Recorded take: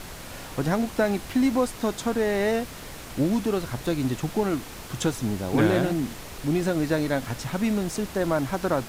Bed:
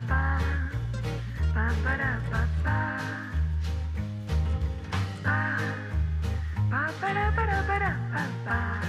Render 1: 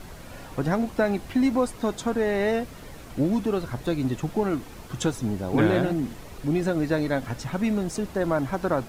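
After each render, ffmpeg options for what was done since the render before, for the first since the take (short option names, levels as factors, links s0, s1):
-af "afftdn=nr=8:nf=-40"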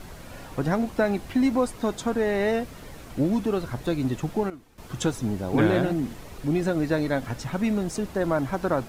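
-filter_complex "[0:a]asplit=3[s0][s1][s2];[s0]atrim=end=4.5,asetpts=PTS-STARTPTS,afade=t=out:st=4.2:d=0.3:c=log:silence=0.16788[s3];[s1]atrim=start=4.5:end=4.78,asetpts=PTS-STARTPTS,volume=0.168[s4];[s2]atrim=start=4.78,asetpts=PTS-STARTPTS,afade=t=in:d=0.3:c=log:silence=0.16788[s5];[s3][s4][s5]concat=n=3:v=0:a=1"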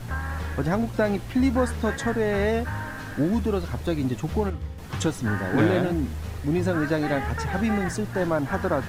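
-filter_complex "[1:a]volume=0.596[s0];[0:a][s0]amix=inputs=2:normalize=0"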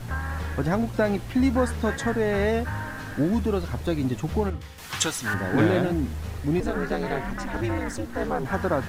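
-filter_complex "[0:a]asettb=1/sr,asplit=3[s0][s1][s2];[s0]atrim=end=4.614[s3];[s1]atrim=start=4.61:end=5.34,asetpts=PTS-STARTPTS,afade=t=in:d=0.004:c=qsin,afade=t=out:st=0.726:d=0.004:c=qsin,tiltshelf=f=800:g=-9.5[s4];[s2]atrim=start=5.336[s5];[s3][s4]acrossfade=d=0.004:c1=hsin:c2=qsin[s6];[s6][s5]acrossfade=d=0.004:c1=qsin:c2=hsin,asettb=1/sr,asplit=3[s7][s8][s9];[s7]atrim=end=6.604[s10];[s8]atrim=start=6.6:end=8.45,asetpts=PTS-STARTPTS,afade=t=in:d=0.004:c=qsin,afade=t=out:st=1.846:d=0.004:c=qsin,aeval=exprs='val(0)*sin(2*PI*120*n/s)':c=same[s11];[s9]atrim=start=8.446[s12];[s10][s11]acrossfade=d=0.004:c1=hsin:c2=qsin[s13];[s13][s12]acrossfade=d=0.004:c1=qsin:c2=hsin"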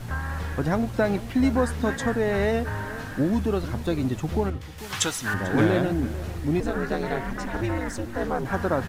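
-filter_complex "[0:a]asplit=2[s0][s1];[s1]adelay=443.1,volume=0.158,highshelf=f=4000:g=-9.97[s2];[s0][s2]amix=inputs=2:normalize=0"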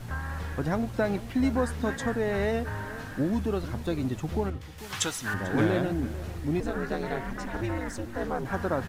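-af "volume=0.631"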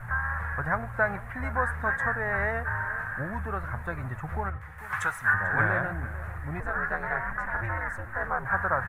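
-af "firequalizer=gain_entry='entry(120,0);entry(270,-17);entry(570,-2);entry(1100,8);entry(1700,11);entry(3000,-16);entry(4900,-22);entry(9300,-8)':delay=0.05:min_phase=1"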